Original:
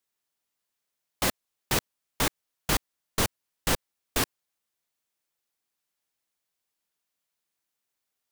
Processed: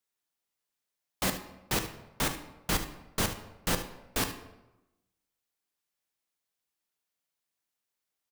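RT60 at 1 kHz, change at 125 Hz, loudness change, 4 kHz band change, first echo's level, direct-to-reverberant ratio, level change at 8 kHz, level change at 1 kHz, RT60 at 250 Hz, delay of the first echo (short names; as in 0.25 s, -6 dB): 0.95 s, -2.0 dB, -3.5 dB, -3.5 dB, -12.5 dB, 6.5 dB, -3.5 dB, -3.0 dB, 1.1 s, 74 ms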